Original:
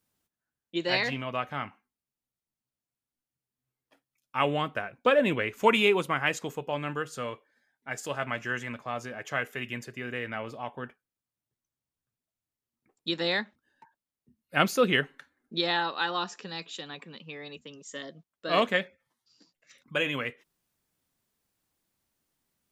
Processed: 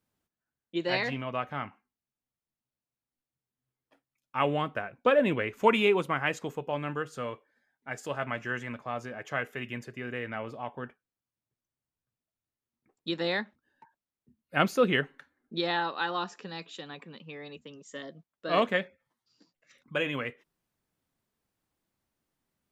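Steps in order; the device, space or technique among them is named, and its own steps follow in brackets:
behind a face mask (high-shelf EQ 2,900 Hz −8 dB)

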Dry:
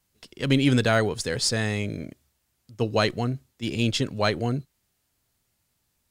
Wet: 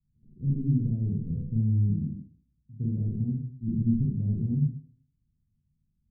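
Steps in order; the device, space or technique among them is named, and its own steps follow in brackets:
club heard from the street (brickwall limiter −14.5 dBFS, peak gain reduction 6 dB; low-pass filter 200 Hz 24 dB per octave; convolution reverb RT60 0.55 s, pre-delay 33 ms, DRR −3 dB)

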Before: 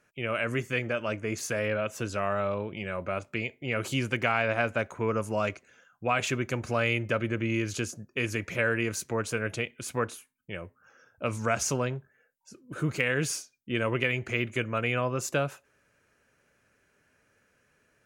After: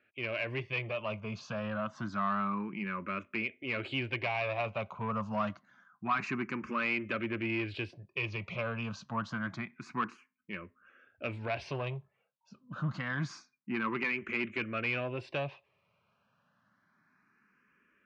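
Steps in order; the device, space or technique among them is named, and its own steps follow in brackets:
barber-pole phaser into a guitar amplifier (frequency shifter mixed with the dry sound +0.27 Hz; soft clipping −25 dBFS, distortion −14 dB; loudspeaker in its box 96–4,100 Hz, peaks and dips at 200 Hz +7 dB, 480 Hz −7 dB, 1,100 Hz +8 dB, 2,500 Hz +4 dB)
level −1.5 dB

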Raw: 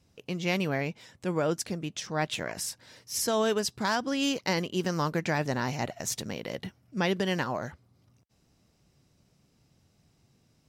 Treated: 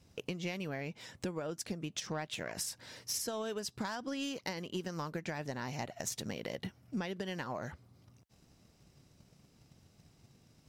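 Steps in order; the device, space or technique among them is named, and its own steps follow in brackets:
drum-bus smash (transient designer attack +7 dB, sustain +1 dB; downward compressor 12 to 1, threshold −35 dBFS, peak gain reduction 17.5 dB; soft clipping −27 dBFS, distortion −20 dB)
level +1.5 dB

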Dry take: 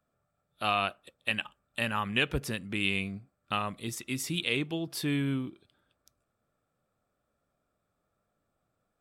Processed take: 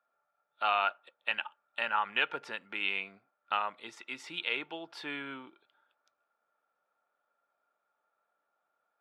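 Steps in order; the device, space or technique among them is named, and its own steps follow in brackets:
tin-can telephone (band-pass filter 640–2,900 Hz; hollow resonant body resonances 890/1,400 Hz, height 11 dB, ringing for 40 ms)

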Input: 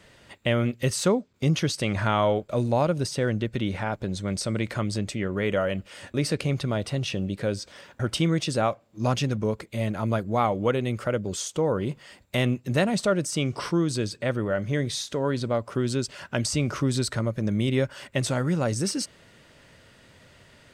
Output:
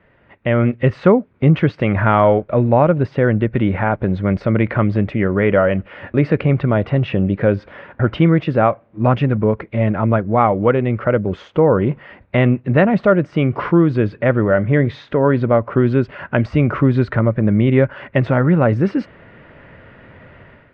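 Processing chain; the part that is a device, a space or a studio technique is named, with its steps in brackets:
action camera in a waterproof case (low-pass filter 2,200 Hz 24 dB per octave; automatic gain control gain up to 12.5 dB; AAC 128 kbit/s 44,100 Hz)

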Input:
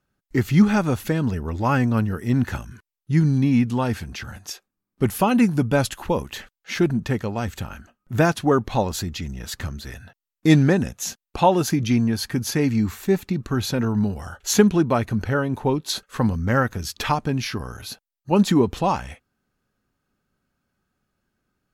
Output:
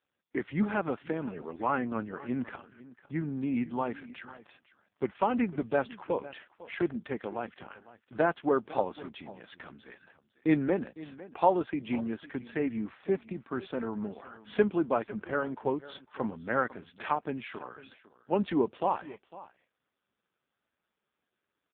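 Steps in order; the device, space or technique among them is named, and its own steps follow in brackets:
satellite phone (band-pass filter 320–3,200 Hz; single-tap delay 502 ms −18 dB; level −5.5 dB; AMR narrowband 5.15 kbit/s 8,000 Hz)

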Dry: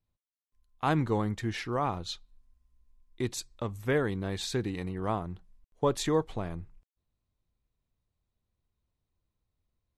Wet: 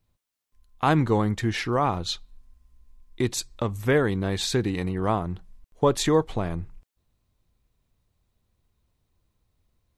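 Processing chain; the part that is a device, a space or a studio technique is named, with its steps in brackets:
parallel compression (in parallel at −1.5 dB: downward compressor, threshold −39 dBFS, peak gain reduction 16.5 dB)
on the sum: level +5 dB

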